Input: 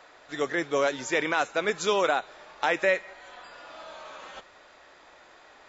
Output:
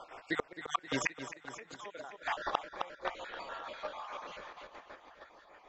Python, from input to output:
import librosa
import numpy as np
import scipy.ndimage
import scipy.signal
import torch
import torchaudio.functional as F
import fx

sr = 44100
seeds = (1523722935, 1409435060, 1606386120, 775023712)

p1 = fx.spec_dropout(x, sr, seeds[0], share_pct=39)
p2 = fx.doppler_pass(p1, sr, speed_mps=18, closest_m=6.7, pass_at_s=2.04)
p3 = fx.lowpass(p2, sr, hz=2100.0, slope=6)
p4 = fx.low_shelf(p3, sr, hz=490.0, db=-6.0)
p5 = fx.hum_notches(p4, sr, base_hz=50, count=3)
p6 = fx.gate_flip(p5, sr, shuts_db=-36.0, range_db=-36)
p7 = p6 + fx.echo_feedback(p6, sr, ms=263, feedback_pct=57, wet_db=-10.0, dry=0)
p8 = p7 * (1.0 - 0.48 / 2.0 + 0.48 / 2.0 * np.cos(2.0 * np.pi * 6.5 * (np.arange(len(p7)) / sr)))
p9 = fx.low_shelf(p8, sr, hz=110.0, db=5.5)
p10 = fx.level_steps(p9, sr, step_db=15)
p11 = p9 + (p10 * librosa.db_to_amplitude(3.0))
y = p11 * librosa.db_to_amplitude(17.5)